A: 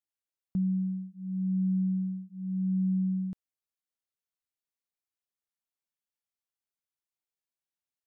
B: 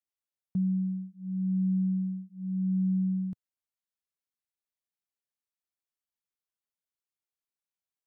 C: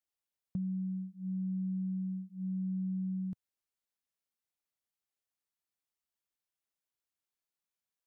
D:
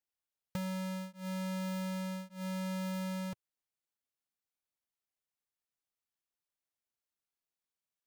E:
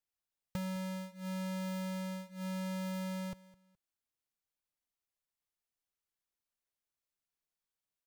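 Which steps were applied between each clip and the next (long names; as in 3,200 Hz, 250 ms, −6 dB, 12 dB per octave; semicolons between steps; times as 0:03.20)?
dynamic equaliser 130 Hz, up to +7 dB, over −44 dBFS, Q 0.82; level −4.5 dB
downward compressor, threshold −34 dBFS, peak gain reduction 8.5 dB
each half-wave held at its own peak; level −5 dB
low-shelf EQ 60 Hz +8.5 dB; repeating echo 210 ms, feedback 27%, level −20 dB; level −1.5 dB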